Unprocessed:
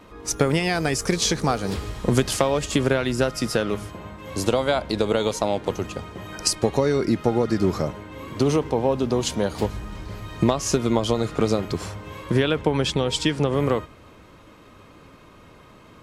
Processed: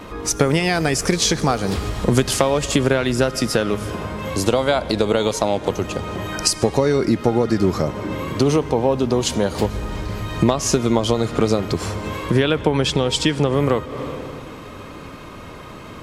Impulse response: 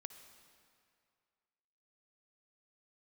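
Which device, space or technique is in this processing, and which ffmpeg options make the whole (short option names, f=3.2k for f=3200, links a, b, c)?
ducked reverb: -filter_complex "[0:a]asplit=3[a][b][c];[1:a]atrim=start_sample=2205[d];[b][d]afir=irnorm=-1:irlink=0[e];[c]apad=whole_len=706572[f];[e][f]sidechaincompress=threshold=-37dB:ratio=8:attack=16:release=177,volume=12.5dB[g];[a][g]amix=inputs=2:normalize=0,volume=1.5dB"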